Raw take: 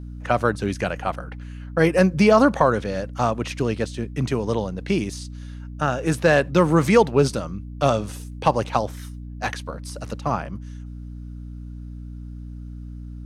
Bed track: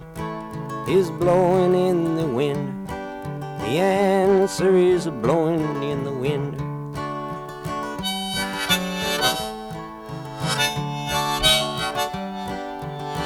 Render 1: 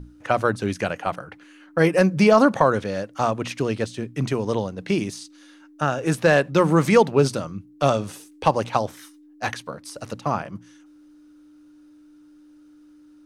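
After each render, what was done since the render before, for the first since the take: hum notches 60/120/180/240 Hz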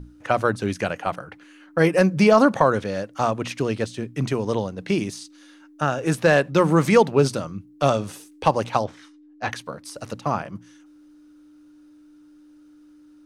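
8.84–9.52 s: distance through air 120 m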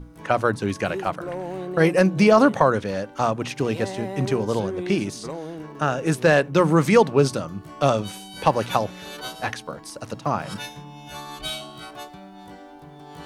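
add bed track -14 dB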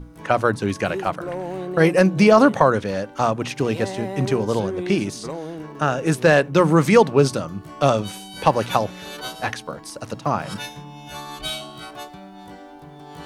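trim +2 dB

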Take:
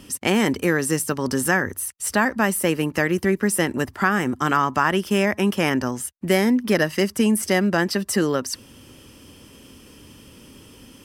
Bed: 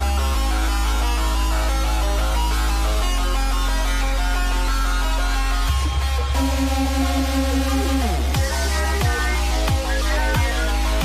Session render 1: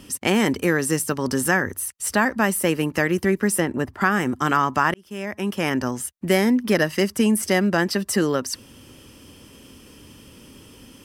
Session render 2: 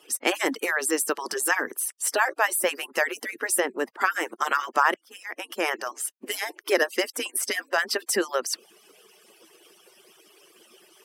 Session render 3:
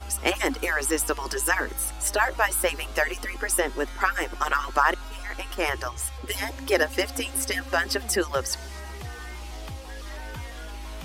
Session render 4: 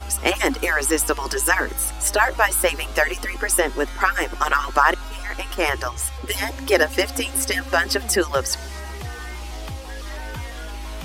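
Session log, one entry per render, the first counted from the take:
3.60–4.01 s: treble shelf 2.5 kHz -10.5 dB; 4.94–5.88 s: fade in
harmonic-percussive separation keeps percussive; high-pass 310 Hz 24 dB/octave
add bed -17.5 dB
trim +5 dB; peak limiter -2 dBFS, peak gain reduction 2 dB

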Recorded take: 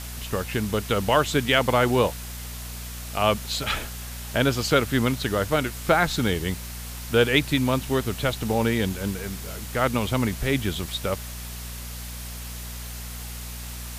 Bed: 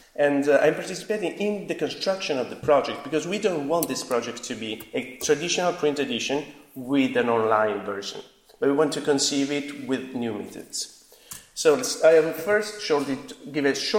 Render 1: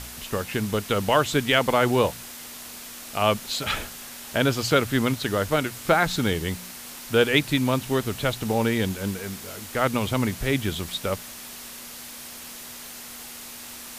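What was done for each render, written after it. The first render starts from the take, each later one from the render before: de-hum 60 Hz, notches 3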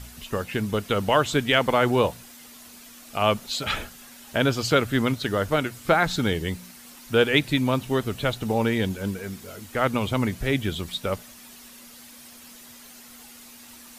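noise reduction 9 dB, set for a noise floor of -40 dBFS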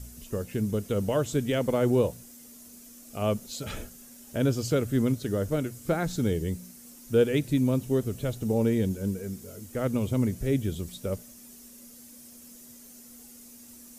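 harmonic-percussive split percussive -4 dB; high-order bell 1.8 kHz -11.5 dB 2.9 oct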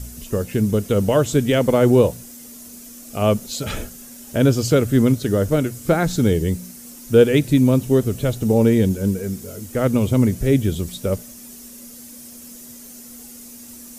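trim +9.5 dB

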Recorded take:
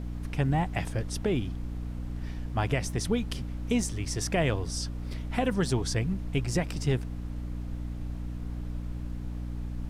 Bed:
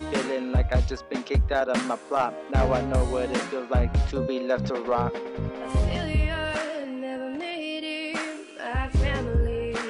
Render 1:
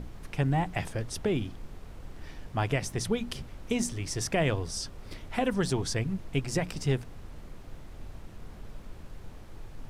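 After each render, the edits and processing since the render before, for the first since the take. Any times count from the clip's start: hum notches 60/120/180/240/300 Hz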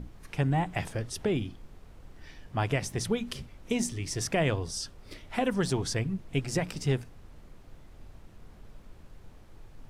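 noise print and reduce 6 dB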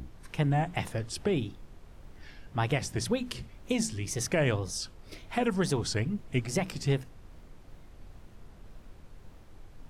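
wow and flutter 140 cents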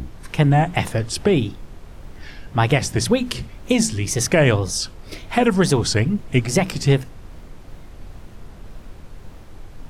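trim +11.5 dB

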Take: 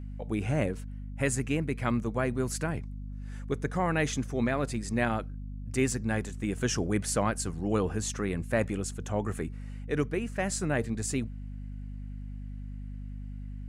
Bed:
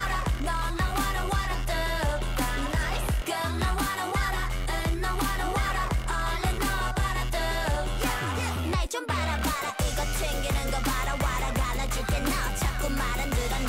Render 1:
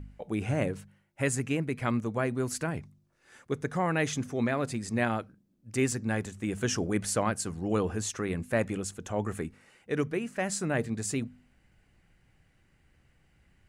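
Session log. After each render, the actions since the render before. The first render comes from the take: de-hum 50 Hz, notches 5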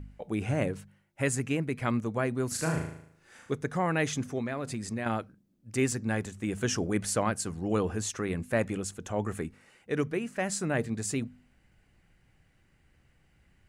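2.48–3.55 s: flutter echo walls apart 6.4 m, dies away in 0.67 s; 4.38–5.06 s: compression, threshold -29 dBFS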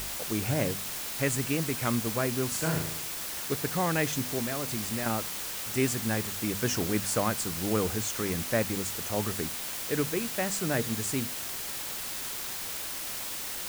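word length cut 6-bit, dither triangular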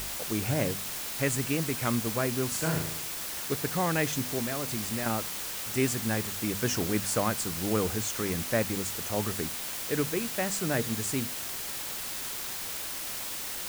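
no audible change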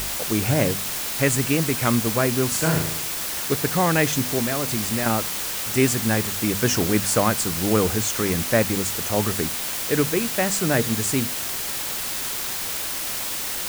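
trim +8 dB

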